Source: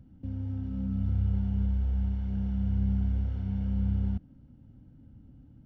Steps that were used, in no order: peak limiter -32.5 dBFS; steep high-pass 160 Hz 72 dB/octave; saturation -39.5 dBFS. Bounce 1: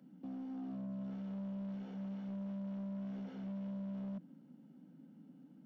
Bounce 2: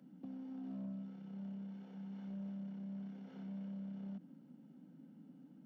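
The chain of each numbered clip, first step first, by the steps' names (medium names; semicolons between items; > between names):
steep high-pass > peak limiter > saturation; peak limiter > steep high-pass > saturation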